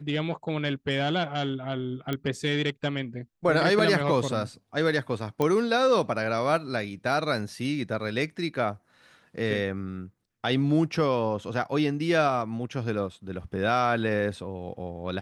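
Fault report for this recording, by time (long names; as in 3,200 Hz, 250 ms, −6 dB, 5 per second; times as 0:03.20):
0:02.13: click −16 dBFS
0:05.42: click −14 dBFS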